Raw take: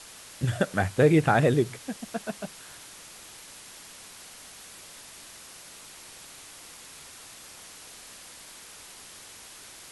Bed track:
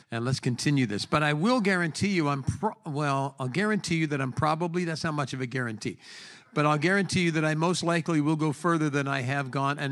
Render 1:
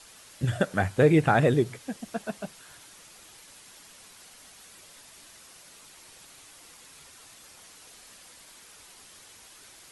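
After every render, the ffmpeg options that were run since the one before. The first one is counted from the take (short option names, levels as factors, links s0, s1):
-af "afftdn=nr=6:nf=-47"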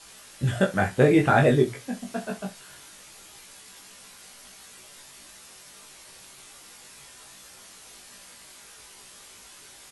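-filter_complex "[0:a]asplit=2[s0][s1];[s1]adelay=16,volume=0.562[s2];[s0][s2]amix=inputs=2:normalize=0,aecho=1:1:21|64:0.668|0.211"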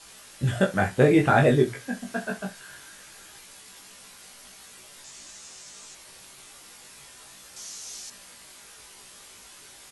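-filter_complex "[0:a]asettb=1/sr,asplit=3[s0][s1][s2];[s0]atrim=end=1.594[s3];[s1]atrim=start=1.59:end=3.38,asetpts=PTS-STARTPTS,afade=t=in:d=0.004:c=qsin,afade=t=out:st=1.786:d=0.004:c=qsin,equalizer=f=1600:t=o:w=0.23:g=10[s4];[s2]atrim=start=3.376[s5];[s3][s4]acrossfade=d=0.004:c1=hsin:c2=qsin[s6];[s6][s5]acrossfade=d=0.004:c1=qsin:c2=hsin,asettb=1/sr,asplit=3[s7][s8][s9];[s7]atrim=end=5.044[s10];[s8]atrim=start=5.04:end=5.95,asetpts=PTS-STARTPTS,afade=t=in:d=0.004:c=qsin,afade=t=out:st=0.906:d=0.004:c=qsin,lowpass=f=7100:t=q:w=2.4[s11];[s9]atrim=start=5.946[s12];[s10][s11]acrossfade=d=0.004:c1=hsin:c2=qsin[s13];[s13][s12]acrossfade=d=0.004:c1=qsin:c2=hsin,asettb=1/sr,asplit=3[s14][s15][s16];[s14]atrim=end=7.564[s17];[s15]atrim=start=7.56:end=8.1,asetpts=PTS-STARTPTS,afade=t=in:d=0.004:c=qsin,afade=t=out:st=0.536:d=0.004:c=qsin,equalizer=f=6100:w=1.2:g=14[s18];[s16]atrim=start=8.096[s19];[s17][s18]acrossfade=d=0.004:c1=hsin:c2=qsin[s20];[s20][s19]acrossfade=d=0.004:c1=qsin:c2=hsin"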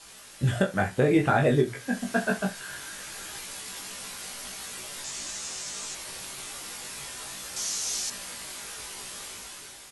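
-af "dynaudnorm=f=840:g=3:m=2.82,alimiter=limit=0.266:level=0:latency=1:release=409"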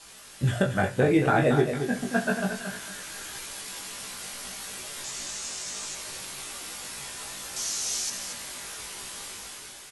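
-af "aecho=1:1:227|454|681:0.398|0.111|0.0312"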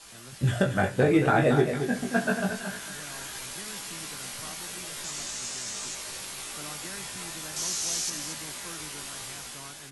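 -filter_complex "[1:a]volume=0.0891[s0];[0:a][s0]amix=inputs=2:normalize=0"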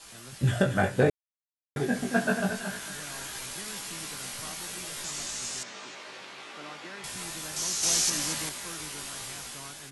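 -filter_complex "[0:a]asettb=1/sr,asplit=3[s0][s1][s2];[s0]atrim=end=5.634[s3];[s1]atrim=start=5.63:end=7.04,asetpts=PTS-STARTPTS,afade=t=in:d=0.004:c=qsin,afade=t=out:st=1.406:d=0.004:c=qsin,highpass=240,lowpass=3000[s4];[s2]atrim=start=7.036[s5];[s3][s4]acrossfade=d=0.004:c1=hsin:c2=qsin[s6];[s6][s5]acrossfade=d=0.004:c1=qsin:c2=hsin,asplit=5[s7][s8][s9][s10][s11];[s7]atrim=end=1.1,asetpts=PTS-STARTPTS,afade=t=out:st=1.096:d=0.004:c=hsin[s12];[s8]atrim=start=1.1:end=1.76,asetpts=PTS-STARTPTS,volume=0[s13];[s9]atrim=start=1.76:end=7.832,asetpts=PTS-STARTPTS,afade=t=in:d=0.004:c=hsin[s14];[s10]atrim=start=7.828:end=8.492,asetpts=PTS-STARTPTS,volume=1.78[s15];[s11]atrim=start=8.488[s16];[s12][s13][s14]concat=n=3:v=0:a=1[s17];[s17][s15]acrossfade=d=0.004:c1=hsin:c2=hsin[s18];[s18][s16]acrossfade=d=0.004:c1=hsin:c2=hsin"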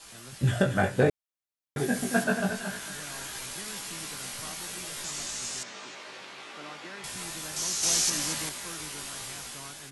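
-filter_complex "[0:a]asettb=1/sr,asplit=3[s0][s1][s2];[s0]atrim=end=1.784[s3];[s1]atrim=start=1.78:end=2.24,asetpts=PTS-STARTPTS,afade=t=in:d=0.004:c=qsin,afade=t=out:st=0.456:d=0.004:c=qsin,highshelf=f=7900:g=12[s4];[s2]atrim=start=2.236[s5];[s3][s4]acrossfade=d=0.004:c1=hsin:c2=qsin[s6];[s6][s5]acrossfade=d=0.004:c1=qsin:c2=hsin"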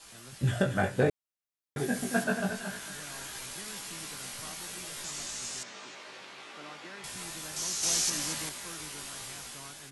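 -af "volume=0.708"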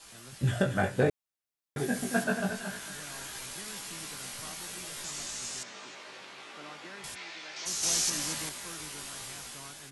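-filter_complex "[0:a]asplit=3[s0][s1][s2];[s0]afade=t=out:st=7.14:d=0.02[s3];[s1]highpass=410,equalizer=f=520:t=q:w=4:g=-3,equalizer=f=1100:t=q:w=4:g=-4,equalizer=f=2200:t=q:w=4:g=7,lowpass=f=4900:w=0.5412,lowpass=f=4900:w=1.3066,afade=t=in:st=7.14:d=0.02,afade=t=out:st=7.65:d=0.02[s4];[s2]afade=t=in:st=7.65:d=0.02[s5];[s3][s4][s5]amix=inputs=3:normalize=0"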